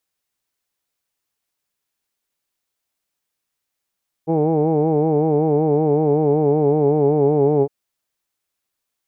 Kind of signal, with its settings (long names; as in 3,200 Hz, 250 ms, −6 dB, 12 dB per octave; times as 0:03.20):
vowel from formants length 3.41 s, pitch 157 Hz, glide −1.5 semitones, vibrato depth 0.85 semitones, F1 410 Hz, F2 810 Hz, F3 2,300 Hz